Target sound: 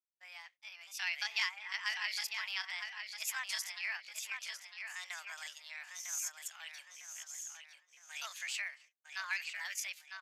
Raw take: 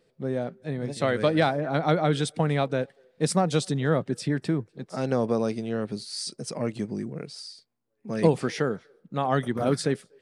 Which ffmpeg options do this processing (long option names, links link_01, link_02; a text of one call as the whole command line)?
ffmpeg -i in.wav -filter_complex "[0:a]highpass=frequency=1300:width=0.5412,highpass=frequency=1300:width=1.3066,asplit=2[link_01][link_02];[link_02]adelay=954,lowpass=frequency=4000:poles=1,volume=-6dB,asplit=2[link_03][link_04];[link_04]adelay=954,lowpass=frequency=4000:poles=1,volume=0.43,asplit=2[link_05][link_06];[link_06]adelay=954,lowpass=frequency=4000:poles=1,volume=0.43,asplit=2[link_07][link_08];[link_08]adelay=954,lowpass=frequency=4000:poles=1,volume=0.43,asplit=2[link_09][link_10];[link_10]adelay=954,lowpass=frequency=4000:poles=1,volume=0.43[link_11];[link_01][link_03][link_05][link_07][link_09][link_11]amix=inputs=6:normalize=0,agate=range=-42dB:threshold=-59dB:ratio=16:detection=peak,lowpass=6500,asetrate=60591,aresample=44100,atempo=0.727827,volume=-2.5dB" out.wav